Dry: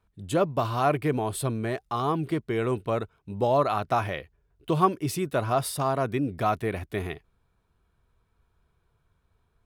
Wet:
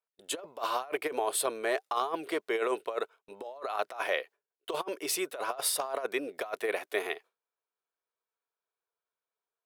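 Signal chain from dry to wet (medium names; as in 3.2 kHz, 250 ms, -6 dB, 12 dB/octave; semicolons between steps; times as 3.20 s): Chebyshev high-pass 470 Hz, order 3; gate with hold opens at -53 dBFS; compressor with a negative ratio -31 dBFS, ratio -0.5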